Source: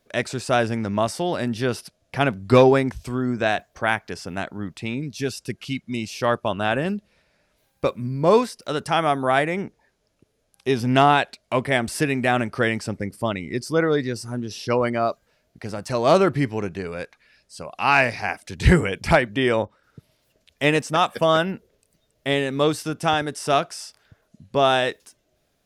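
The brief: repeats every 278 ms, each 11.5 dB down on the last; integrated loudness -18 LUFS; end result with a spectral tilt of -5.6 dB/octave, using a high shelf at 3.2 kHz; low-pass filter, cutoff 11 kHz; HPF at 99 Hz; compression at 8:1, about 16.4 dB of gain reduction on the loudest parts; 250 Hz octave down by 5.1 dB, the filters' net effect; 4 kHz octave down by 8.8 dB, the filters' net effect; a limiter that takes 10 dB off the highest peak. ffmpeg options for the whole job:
-af "highpass=99,lowpass=11000,equalizer=f=250:t=o:g=-6.5,highshelf=f=3200:g=-6,equalizer=f=4000:t=o:g=-7.5,acompressor=threshold=0.0355:ratio=8,alimiter=level_in=1.26:limit=0.0631:level=0:latency=1,volume=0.794,aecho=1:1:278|556|834:0.266|0.0718|0.0194,volume=10"

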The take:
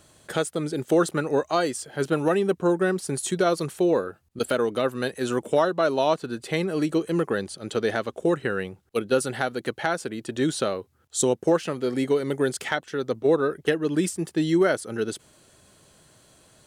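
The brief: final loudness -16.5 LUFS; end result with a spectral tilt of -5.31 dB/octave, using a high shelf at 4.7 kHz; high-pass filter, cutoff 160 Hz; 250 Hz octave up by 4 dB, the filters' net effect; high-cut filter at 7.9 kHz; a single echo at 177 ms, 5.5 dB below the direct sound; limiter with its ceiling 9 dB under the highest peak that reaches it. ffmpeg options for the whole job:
-af "highpass=160,lowpass=7900,equalizer=f=250:t=o:g=6.5,highshelf=f=4700:g=-3.5,alimiter=limit=0.15:level=0:latency=1,aecho=1:1:177:0.531,volume=3.16"

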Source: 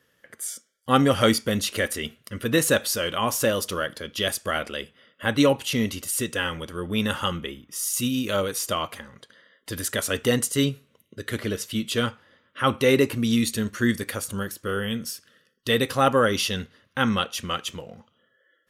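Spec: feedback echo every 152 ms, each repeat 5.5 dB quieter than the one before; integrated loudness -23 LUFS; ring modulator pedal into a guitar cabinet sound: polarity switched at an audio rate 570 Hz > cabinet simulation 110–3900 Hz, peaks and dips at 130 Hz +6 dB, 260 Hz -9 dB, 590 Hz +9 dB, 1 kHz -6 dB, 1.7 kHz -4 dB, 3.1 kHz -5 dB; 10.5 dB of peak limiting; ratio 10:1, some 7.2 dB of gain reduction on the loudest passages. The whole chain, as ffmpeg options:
-af "acompressor=threshold=0.0891:ratio=10,alimiter=limit=0.0944:level=0:latency=1,aecho=1:1:152|304|456|608|760|912|1064:0.531|0.281|0.149|0.079|0.0419|0.0222|0.0118,aeval=exprs='val(0)*sgn(sin(2*PI*570*n/s))':c=same,highpass=110,equalizer=f=130:t=q:w=4:g=6,equalizer=f=260:t=q:w=4:g=-9,equalizer=f=590:t=q:w=4:g=9,equalizer=f=1000:t=q:w=4:g=-6,equalizer=f=1700:t=q:w=4:g=-4,equalizer=f=3100:t=q:w=4:g=-5,lowpass=f=3900:w=0.5412,lowpass=f=3900:w=1.3066,volume=2.82"

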